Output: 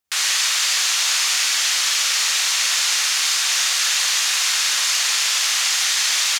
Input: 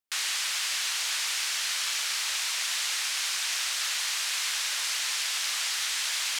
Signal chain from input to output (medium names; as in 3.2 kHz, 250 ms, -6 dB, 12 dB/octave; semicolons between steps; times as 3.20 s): speakerphone echo 160 ms, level -13 dB; on a send at -4 dB: reverberation RT60 0.40 s, pre-delay 44 ms; on the sum: trim +8 dB